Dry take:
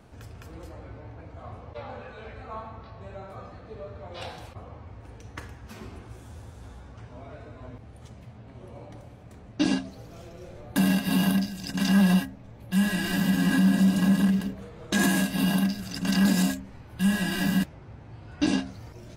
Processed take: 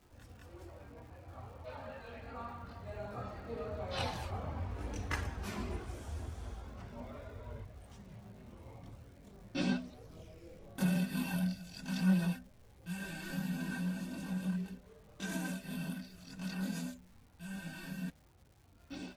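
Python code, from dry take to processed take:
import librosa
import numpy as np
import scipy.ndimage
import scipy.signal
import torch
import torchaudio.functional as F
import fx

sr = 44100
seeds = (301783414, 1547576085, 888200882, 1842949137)

y = fx.doppler_pass(x, sr, speed_mps=21, closest_m=20.0, pass_at_s=4.93)
y = fx.chorus_voices(y, sr, voices=4, hz=0.38, base_ms=23, depth_ms=2.8, mix_pct=60)
y = fx.dmg_crackle(y, sr, seeds[0], per_s=380.0, level_db=-64.0)
y = y * 10.0 ** (7.0 / 20.0)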